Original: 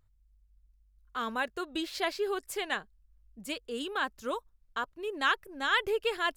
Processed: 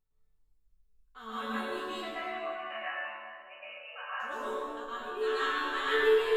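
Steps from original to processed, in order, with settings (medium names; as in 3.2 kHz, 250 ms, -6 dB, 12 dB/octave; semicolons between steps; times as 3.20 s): 1.86–4.20 s: brick-wall FIR band-pass 490–3000 Hz; chord resonator D3 major, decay 0.49 s; reverberation RT60 2.4 s, pre-delay 107 ms, DRR -11 dB; trim +5.5 dB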